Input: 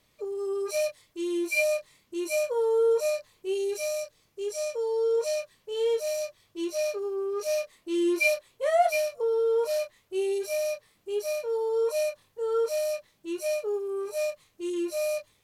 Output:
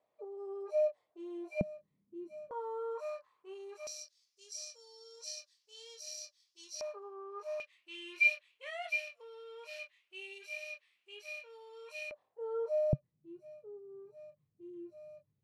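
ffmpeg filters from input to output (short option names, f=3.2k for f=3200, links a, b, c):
-af "asetnsamples=n=441:p=0,asendcmd='1.61 bandpass f 190;2.51 bandpass f 1100;3.87 bandpass f 5200;6.81 bandpass f 1000;7.6 bandpass f 2600;12.11 bandpass f 700;12.93 bandpass f 140',bandpass=f=680:t=q:w=3.6:csg=0"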